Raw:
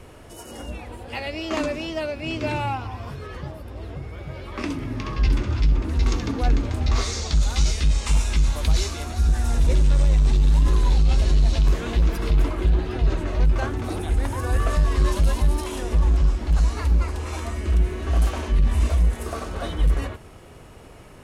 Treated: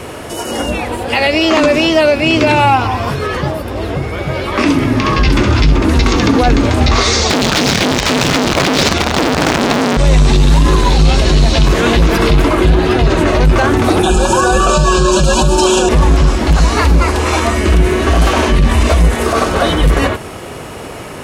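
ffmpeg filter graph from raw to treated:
-filter_complex "[0:a]asettb=1/sr,asplit=3[a][b][c];[a]atrim=end=7.294[d];[b]atrim=start=7.29:end=9.97,asetpts=PTS-STARTPTS,afade=t=in:d=0.004:c=qsin,afade=t=out:st=2.676:d=0.004:c=qsin,lowshelf=f=290:g=5,acompressor=threshold=-18dB:ratio=2.5:attack=3.2:release=140:knee=1:detection=peak,aeval=exprs='(mod(10*val(0)+1,2)-1)/10':c=same[e];[c]atrim=start=9.966[f];[d][e]acrossfade=d=0.004:c1=hsin:c2=qsin[g];[g][f]acrossfade=d=0.004:c1=qsin:c2=hsin,asettb=1/sr,asplit=3[h][i][j];[h]atrim=end=14.034[k];[i]atrim=start=14.03:end=15.89,asetpts=PTS-STARTPTS,afade=t=in:d=0.004:c=qsin,afade=t=out:st=1.856:d=0.004:c=qsin,asuperstop=centerf=2000:order=12:qfactor=3.2,equalizer=f=7.4k:t=o:w=0.67:g=14.5,aecho=1:1:5.4:0.96,atrim=end_sample=82026[l];[j]atrim=start=15.886[m];[k][l]acrossfade=d=0.004:c1=hsin:c2=qsin[n];[n][m]acrossfade=d=0.004:c1=qsin:c2=hsin,highpass=f=190:p=1,acrossover=split=5800[o][p];[p]acompressor=threshold=-49dB:ratio=4:attack=1:release=60[q];[o][q]amix=inputs=2:normalize=0,alimiter=level_in=21.5dB:limit=-1dB:release=50:level=0:latency=1,volume=-1dB"

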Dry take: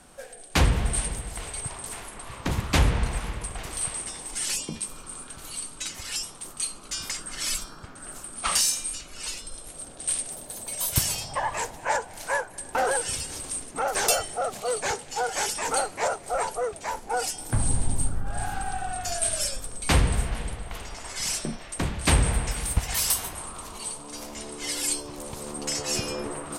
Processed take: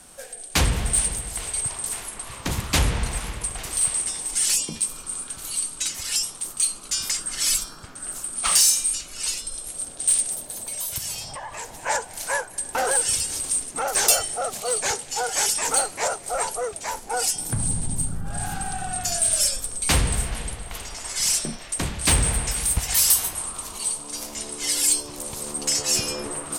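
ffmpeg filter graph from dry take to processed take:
-filter_complex "[0:a]asettb=1/sr,asplit=3[a][b][c];[a]atrim=end=10.414[d];[b]atrim=start=10.41:end=11.75,asetpts=PTS-STARTPTS,afade=t=in:d=0.004:c=qsin,afade=t=out:st=1.336:d=0.004:c=qsin,highshelf=f=4.6k:g=-5.5,acompressor=threshold=-35dB:ratio=3:attack=3.2:release=140:knee=1:detection=peak[e];[c]atrim=start=11.746[f];[d][e]acrossfade=d=0.004:c1=hsin:c2=qsin[g];[g][f]acrossfade=d=0.004:c1=qsin:c2=hsin,asettb=1/sr,asplit=3[h][i][j];[h]atrim=end=17.354[k];[i]atrim=start=17.35:end=19.31,asetpts=PTS-STARTPTS,afade=t=in:d=0.004:c=qsin,afade=t=out:st=1.956:d=0.004:c=qsin,equalizer=f=160:t=o:w=1.2:g=10,acompressor=threshold=-25dB:ratio=2:attack=3.2:release=140:knee=1:detection=peak[l];[j]atrim=start=19.306[m];[k][l]acrossfade=d=0.004:c1=hsin:c2=qsin[n];[n][m]acrossfade=d=0.004:c1=qsin:c2=hsin,highshelf=f=3.7k:g=10.5,acontrast=78,volume=-7dB"

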